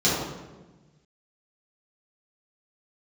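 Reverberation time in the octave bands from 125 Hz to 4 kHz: 2.0, 1.6, 1.3, 1.1, 0.95, 0.80 s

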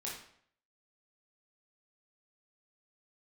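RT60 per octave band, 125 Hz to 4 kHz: 0.65, 0.60, 0.65, 0.60, 0.60, 0.50 s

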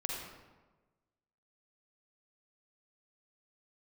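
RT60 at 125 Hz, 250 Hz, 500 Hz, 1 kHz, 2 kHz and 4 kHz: 1.4, 1.3, 1.3, 1.2, 1.0, 0.75 s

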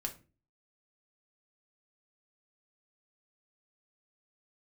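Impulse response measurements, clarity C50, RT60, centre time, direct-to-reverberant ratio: 14.0 dB, 0.35 s, 10 ms, 2.0 dB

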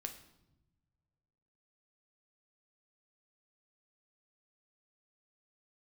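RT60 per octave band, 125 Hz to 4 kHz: 2.2, 1.7, 1.1, 0.85, 0.70, 0.70 s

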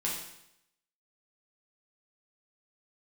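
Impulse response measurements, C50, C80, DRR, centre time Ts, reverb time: 3.0 dB, 6.0 dB, -5.0 dB, 47 ms, 0.80 s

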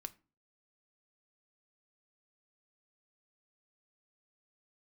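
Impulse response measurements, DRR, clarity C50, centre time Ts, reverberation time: 10.0 dB, 20.5 dB, 3 ms, 0.35 s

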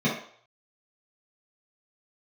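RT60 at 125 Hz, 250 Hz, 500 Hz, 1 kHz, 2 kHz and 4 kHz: 0.30, 0.35, 0.55, 0.60, 0.55, 0.55 s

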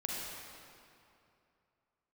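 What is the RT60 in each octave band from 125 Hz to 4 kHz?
2.9, 2.7, 2.7, 2.6, 2.3, 1.9 s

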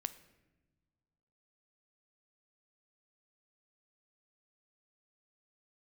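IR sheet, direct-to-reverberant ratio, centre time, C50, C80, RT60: 12.0 dB, 6 ms, 15.0 dB, 17.0 dB, not exponential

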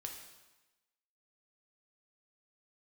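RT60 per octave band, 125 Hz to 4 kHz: 1.0, 1.1, 1.1, 1.1, 1.1, 1.0 s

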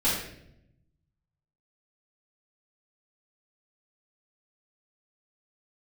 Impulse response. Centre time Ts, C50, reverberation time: 55 ms, 1.5 dB, 0.75 s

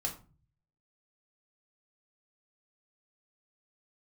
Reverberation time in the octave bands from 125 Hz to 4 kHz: 0.90, 0.55, 0.35, 0.35, 0.30, 0.25 s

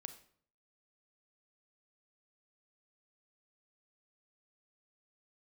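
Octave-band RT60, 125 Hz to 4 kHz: 0.75, 0.65, 0.60, 0.55, 0.45, 0.45 s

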